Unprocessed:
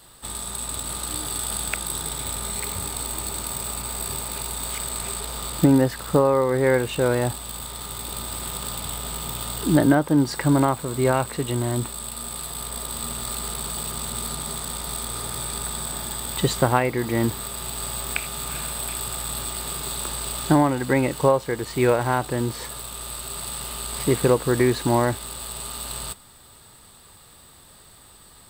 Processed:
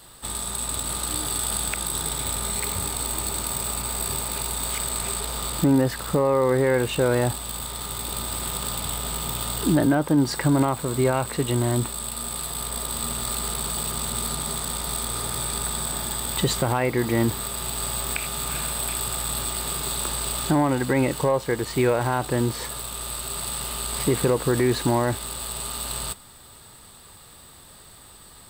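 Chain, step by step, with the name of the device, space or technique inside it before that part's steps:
soft clipper into limiter (soft clipping −6.5 dBFS, distortion −24 dB; brickwall limiter −14 dBFS, peak gain reduction 6.5 dB)
level +2 dB

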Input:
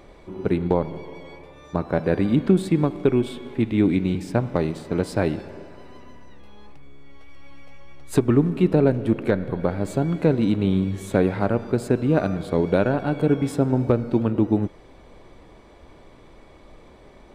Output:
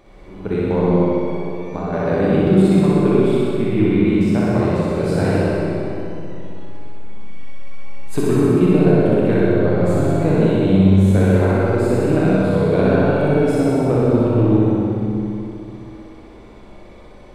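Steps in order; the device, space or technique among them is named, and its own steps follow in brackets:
0:03.45–0:04.06: low-pass filter 3,600 Hz
tunnel (flutter between parallel walls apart 10.7 metres, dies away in 1.5 s; convolution reverb RT60 2.8 s, pre-delay 23 ms, DRR −4.5 dB)
level −3.5 dB

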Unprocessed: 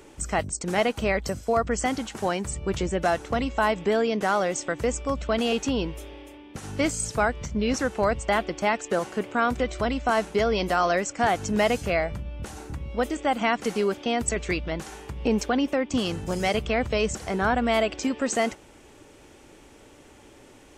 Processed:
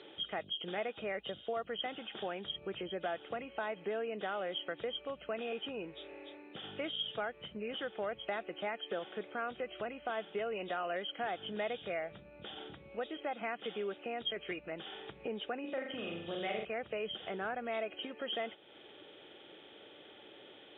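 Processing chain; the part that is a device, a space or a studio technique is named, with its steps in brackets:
0:15.60–0:16.65: flutter between parallel walls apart 7.1 metres, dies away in 0.65 s
hearing aid with frequency lowering (hearing-aid frequency compression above 2,400 Hz 4 to 1; downward compressor 2 to 1, threshold −39 dBFS, peak gain reduction 11.5 dB; loudspeaker in its box 260–6,600 Hz, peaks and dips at 260 Hz −8 dB, 1,000 Hz −9 dB, 2,600 Hz −6 dB, 4,300 Hz +9 dB)
level −2 dB

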